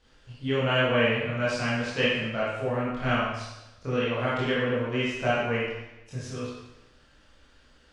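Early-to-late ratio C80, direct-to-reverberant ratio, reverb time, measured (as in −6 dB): 2.5 dB, −8.5 dB, 0.95 s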